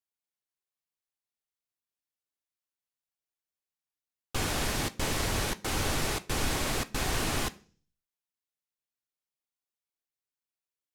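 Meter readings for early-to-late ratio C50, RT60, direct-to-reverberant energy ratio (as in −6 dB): 20.0 dB, 0.40 s, 10.0 dB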